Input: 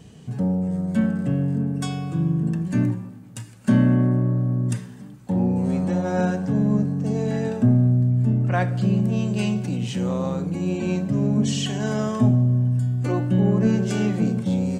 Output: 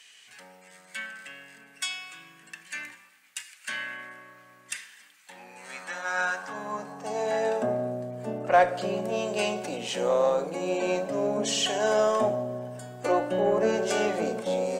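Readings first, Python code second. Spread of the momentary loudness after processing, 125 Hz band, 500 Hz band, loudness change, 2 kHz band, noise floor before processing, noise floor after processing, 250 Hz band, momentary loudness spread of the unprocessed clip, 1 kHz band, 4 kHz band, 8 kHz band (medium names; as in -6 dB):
17 LU, -24.0 dB, +3.0 dB, -6.0 dB, +4.5 dB, -43 dBFS, -55 dBFS, -15.5 dB, 8 LU, +4.5 dB, +3.0 dB, +2.5 dB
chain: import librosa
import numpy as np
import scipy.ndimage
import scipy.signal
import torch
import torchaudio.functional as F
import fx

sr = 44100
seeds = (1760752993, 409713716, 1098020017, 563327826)

p1 = fx.hum_notches(x, sr, base_hz=50, count=5)
p2 = fx.filter_sweep_highpass(p1, sr, from_hz=2100.0, to_hz=570.0, start_s=5.38, end_s=7.71, q=2.1)
p3 = fx.cheby_harmonics(p2, sr, harmonics=(6,), levels_db=(-37,), full_scale_db=-9.5)
p4 = 10.0 ** (-22.5 / 20.0) * np.tanh(p3 / 10.0 ** (-22.5 / 20.0))
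y = p3 + (p4 * 10.0 ** (-9.0 / 20.0))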